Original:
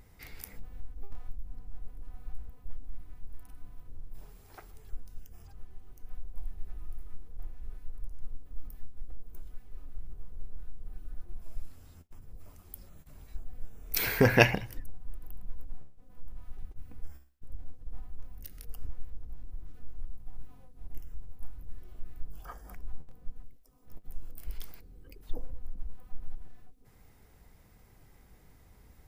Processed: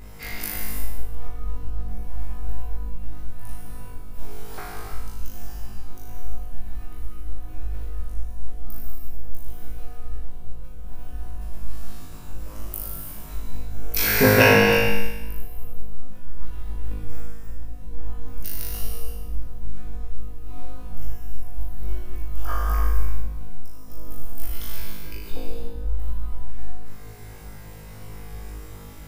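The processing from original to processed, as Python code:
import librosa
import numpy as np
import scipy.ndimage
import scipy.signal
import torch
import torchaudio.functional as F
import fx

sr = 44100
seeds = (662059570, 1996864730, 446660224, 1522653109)

p1 = fx.over_compress(x, sr, threshold_db=-38.0, ratio=-1.0)
p2 = x + F.gain(torch.from_numpy(p1), 0.0).numpy()
p3 = fx.room_flutter(p2, sr, wall_m=3.3, rt60_s=1.0)
y = fx.rev_gated(p3, sr, seeds[0], gate_ms=360, shape='flat', drr_db=0.0)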